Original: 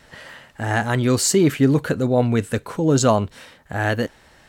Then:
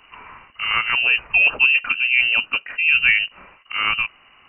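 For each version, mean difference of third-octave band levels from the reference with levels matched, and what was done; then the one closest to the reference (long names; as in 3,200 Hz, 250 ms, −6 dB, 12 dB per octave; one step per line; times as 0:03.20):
15.5 dB: voice inversion scrambler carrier 2,900 Hz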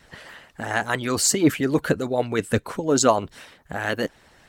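2.5 dB: harmonic and percussive parts rebalanced harmonic −15 dB
level +2 dB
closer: second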